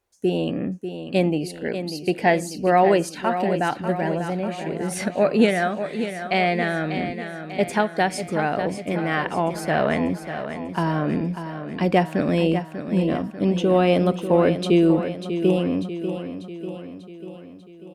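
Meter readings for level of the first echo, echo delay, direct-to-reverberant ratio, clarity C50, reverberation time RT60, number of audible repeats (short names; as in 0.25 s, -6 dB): -9.5 dB, 0.593 s, none, none, none, 6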